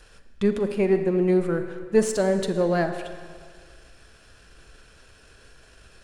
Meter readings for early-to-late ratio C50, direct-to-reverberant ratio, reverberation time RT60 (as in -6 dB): 8.5 dB, 7.5 dB, 1.9 s